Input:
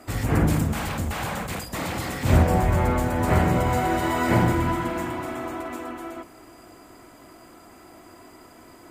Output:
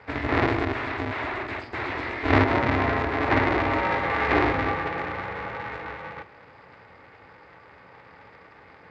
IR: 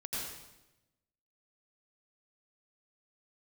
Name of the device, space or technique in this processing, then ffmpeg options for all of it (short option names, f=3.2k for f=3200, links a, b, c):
ring modulator pedal into a guitar cabinet: -af "aeval=exprs='val(0)*sgn(sin(2*PI*180*n/s))':c=same,highpass=84,equalizer=f=150:t=q:w=4:g=-10,equalizer=f=220:t=q:w=4:g=-8,equalizer=f=510:t=q:w=4:g=-5,equalizer=f=2k:t=q:w=4:g=6,equalizer=f=3.1k:t=q:w=4:g=-6,lowpass=f=3.5k:w=0.5412,lowpass=f=3.5k:w=1.3066"